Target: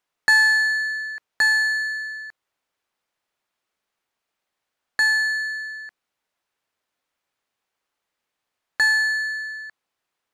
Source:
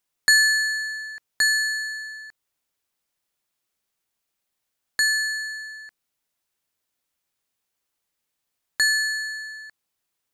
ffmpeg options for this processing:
-filter_complex "[0:a]asplit=2[a][b];[b]highpass=f=720:p=1,volume=10dB,asoftclip=type=tanh:threshold=-6dB[c];[a][c]amix=inputs=2:normalize=0,lowpass=f=1.4k:p=1,volume=-6dB,volume=3dB"

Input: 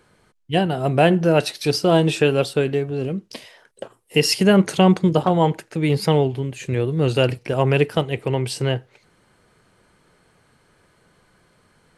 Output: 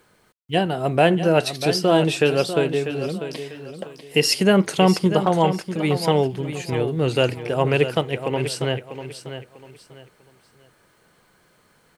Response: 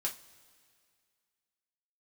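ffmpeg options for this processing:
-af "lowshelf=f=170:g=-6.5,acrusher=bits=10:mix=0:aa=0.000001,aecho=1:1:645|1290|1935:0.299|0.0836|0.0234"

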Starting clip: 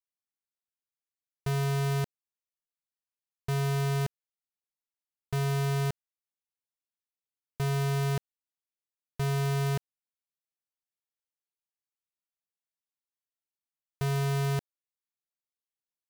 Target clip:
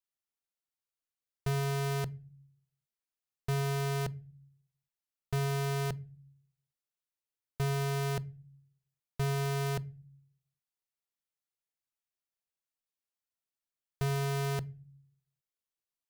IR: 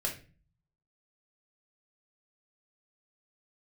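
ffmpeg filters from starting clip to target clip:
-filter_complex "[0:a]asplit=2[a][b];[1:a]atrim=start_sample=2205,lowshelf=f=250:g=9[c];[b][c]afir=irnorm=-1:irlink=0,volume=-21.5dB[d];[a][d]amix=inputs=2:normalize=0,volume=-2dB"

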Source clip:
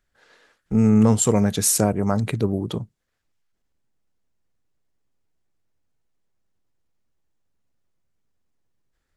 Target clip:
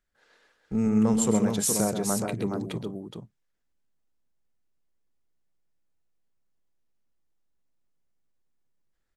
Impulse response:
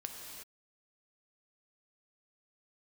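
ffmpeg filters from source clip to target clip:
-af "equalizer=f=100:t=o:w=0.31:g=-12.5,aecho=1:1:130|419:0.398|0.562,volume=-7dB"

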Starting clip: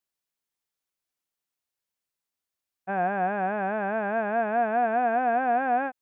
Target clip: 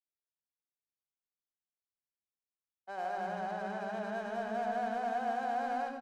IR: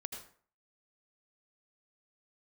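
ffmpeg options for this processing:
-filter_complex "[0:a]acrossover=split=330|2600[a][b][c];[a]adelay=300[d];[c]adelay=580[e];[d][b][e]amix=inputs=3:normalize=0,adynamicsmooth=sensitivity=7.5:basefreq=910[f];[1:a]atrim=start_sample=2205[g];[f][g]afir=irnorm=-1:irlink=0,volume=-8.5dB"

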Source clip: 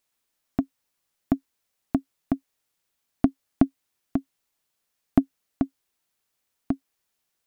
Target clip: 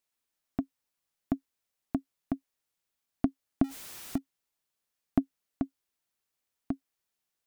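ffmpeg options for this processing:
-filter_complex "[0:a]asettb=1/sr,asplit=3[a][b][c];[a]atrim=end=3.644[d];[b]atrim=start=3.64:end=4.18,asetpts=PTS-STARTPTS,afade=t=in:d=0.004:c=qsin,afade=t=out:st=0.536:d=0.004:c=qsin,aeval=exprs='val(0)+0.5*0.0251*sgn(val(0))':c=same[e];[c]atrim=start=4.176[f];[d][e]acrossfade=d=0.004:c1=hsin:c2=qsin[g];[g][f]acrossfade=d=0.004:c1=qsin:c2=hsin,volume=-7dB"

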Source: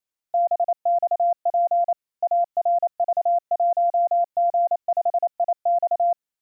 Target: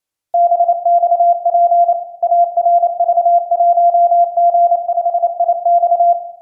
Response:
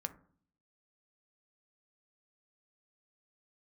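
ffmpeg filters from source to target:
-filter_complex "[0:a]asettb=1/sr,asplit=3[a][b][c];[a]atrim=end=4.834[d];[b]atrim=start=4.83:end=5.24,asetpts=PTS-STARTPTS,afade=t=in:d=0.004:c=qsin,afade=t=out:st=0.406:d=0.004:c=qsin,lowshelf=f=500:g=-9[e];[c]atrim=start=5.236[f];[d][e]acrossfade=d=0.004:c1=hsin:c2=qsin[g];[g][f]acrossfade=d=0.004:c1=qsin:c2=hsin[h];[1:a]atrim=start_sample=2205,asetrate=24696,aresample=44100[i];[h][i]afir=irnorm=-1:irlink=0,volume=6dB"

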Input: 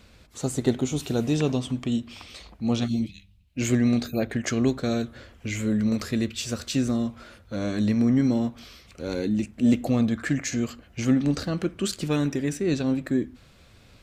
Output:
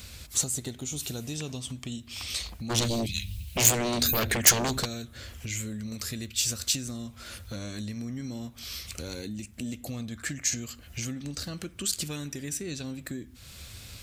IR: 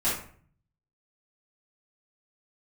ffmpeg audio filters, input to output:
-filter_complex "[0:a]equalizer=f=75:w=0.7:g=12,acompressor=threshold=-36dB:ratio=4,asplit=3[a][b][c];[a]afade=t=out:st=2.69:d=0.02[d];[b]aeval=exprs='0.0631*sin(PI/2*3.55*val(0)/0.0631)':c=same,afade=t=in:st=2.69:d=0.02,afade=t=out:st=4.84:d=0.02[e];[c]afade=t=in:st=4.84:d=0.02[f];[d][e][f]amix=inputs=3:normalize=0,crystalizer=i=8:c=0,volume=-1.5dB"

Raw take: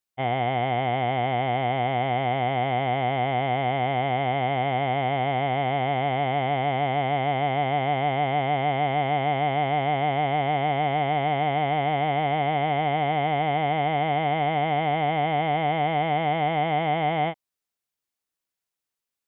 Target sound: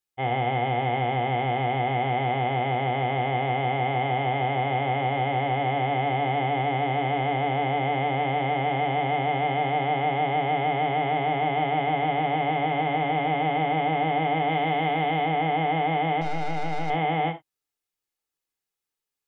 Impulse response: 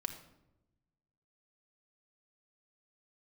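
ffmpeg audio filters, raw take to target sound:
-filter_complex "[0:a]asettb=1/sr,asplit=3[a][b][c];[a]atrim=end=14.494[d];[b]atrim=start=14.49:end=15.25,asetpts=PTS-STARTPTS,afade=t=in:d=0.004:c=qsin,afade=t=out:st=0.756:d=0.004:c=qsin,aemphasis=mode=production:type=50fm[e];[c]atrim=start=15.246[f];[d][e]acrossfade=d=0.004:c1=hsin:c2=qsin[g];[g][f]acrossfade=d=0.004:c1=qsin:c2=hsin,asettb=1/sr,asplit=3[h][i][j];[h]atrim=end=16.214[k];[i]atrim=start=16.21:end=16.9,asetpts=PTS-STARTPTS,afade=t=in:d=0.004:c=qsin,afade=t=out:st=0.686:d=0.004:c=qsin,aeval=exprs='(tanh(17.8*val(0)+0.8)-tanh(0.8))/17.8':c=same[l];[j]atrim=start=16.896[m];[k][l]acrossfade=d=0.004:c1=hsin:c2=qsin[n];[n][m]acrossfade=d=0.004:c1=qsin:c2=hsin[o];[1:a]atrim=start_sample=2205,atrim=end_sample=6174,asetrate=74970,aresample=44100[p];[o][p]afir=irnorm=-1:irlink=0,volume=4dB"

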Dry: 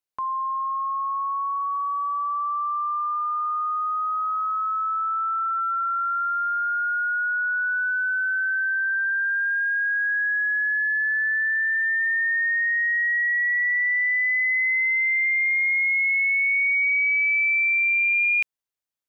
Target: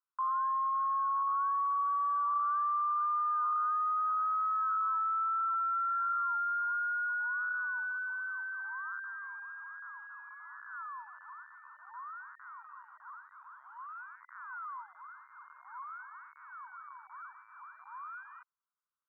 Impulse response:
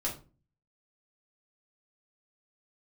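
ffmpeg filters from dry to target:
-af "aeval=exprs='(mod(21.1*val(0)+1,2)-1)/21.1':c=same,asuperpass=centerf=1200:order=8:qfactor=2.2,volume=6.5dB"

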